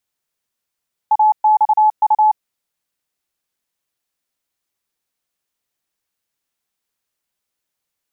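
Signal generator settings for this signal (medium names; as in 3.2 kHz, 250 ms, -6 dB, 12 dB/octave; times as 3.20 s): Morse "AXU" 29 wpm 857 Hz -8.5 dBFS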